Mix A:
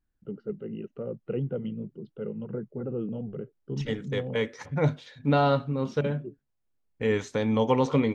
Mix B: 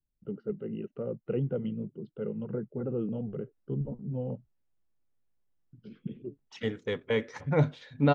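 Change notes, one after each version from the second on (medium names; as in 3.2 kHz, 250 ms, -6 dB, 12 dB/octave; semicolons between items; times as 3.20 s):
second voice: entry +2.75 s; master: add treble shelf 5.9 kHz -10 dB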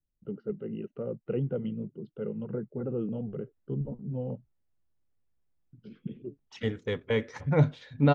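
second voice: add peaking EQ 71 Hz +8 dB 1.6 oct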